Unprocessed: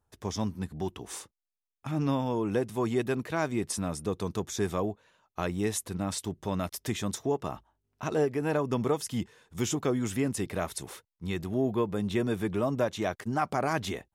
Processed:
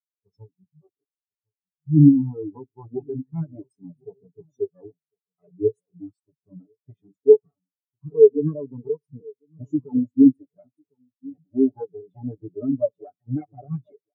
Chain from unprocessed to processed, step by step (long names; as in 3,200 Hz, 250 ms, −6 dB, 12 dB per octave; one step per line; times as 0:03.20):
lower of the sound and its delayed copy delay 7 ms
high-pass filter 100 Hz 24 dB per octave
in parallel at −10 dB: soft clipping −30.5 dBFS, distortion −8 dB
on the sum: slap from a distant wall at 180 metres, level −10 dB
on a send at −19 dB: convolution reverb RT60 0.30 s, pre-delay 58 ms
on the sum: boost into a limiter +18 dB
every bin expanded away from the loudest bin 4 to 1
level −1 dB